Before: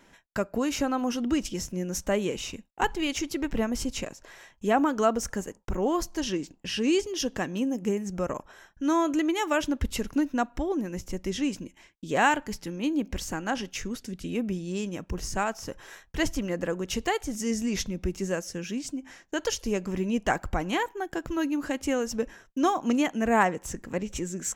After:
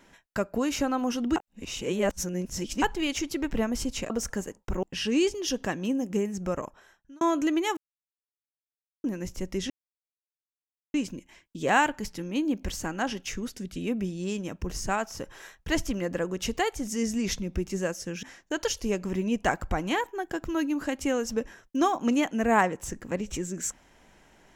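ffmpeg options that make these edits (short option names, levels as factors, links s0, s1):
-filter_complex "[0:a]asplit=10[s0][s1][s2][s3][s4][s5][s6][s7][s8][s9];[s0]atrim=end=1.362[s10];[s1]atrim=start=1.358:end=2.822,asetpts=PTS-STARTPTS,areverse[s11];[s2]atrim=start=2.818:end=4.102[s12];[s3]atrim=start=5.098:end=5.832[s13];[s4]atrim=start=6.548:end=8.93,asetpts=PTS-STARTPTS,afade=t=out:st=1.662:d=0.72[s14];[s5]atrim=start=8.93:end=9.49,asetpts=PTS-STARTPTS,afade=t=in:d=0.004:c=hsin,afade=t=out:st=0.556:d=0.004:c=hsin[s15];[s6]atrim=start=9.49:end=10.76,asetpts=PTS-STARTPTS,volume=0[s16];[s7]atrim=start=10.76:end=11.42,asetpts=PTS-STARTPTS,afade=t=in:d=0.004:c=hsin,afade=t=out:st=0.656:d=0.004:c=hsin,apad=pad_dur=1.24[s17];[s8]atrim=start=11.42:end=18.712,asetpts=PTS-STARTPTS,afade=t=in:d=0.004:c=hsin[s18];[s9]atrim=start=19.048[s19];[s10][s11]acrossfade=d=0.004:c1=hsin:c2=hsin[s20];[s20][s12]acrossfade=d=0.004:c1=hsin:c2=hsin[s21];[s21][s13]acrossfade=d=0.004:c1=hsin:c2=hsin[s22];[s14][s15][s16][s17][s18]concat=n=5:v=0:a=1[s23];[s22][s23]acrossfade=d=0.004:c1=hsin:c2=hsin[s24];[s24][s19]acrossfade=d=0.004:c1=hsin:c2=hsin"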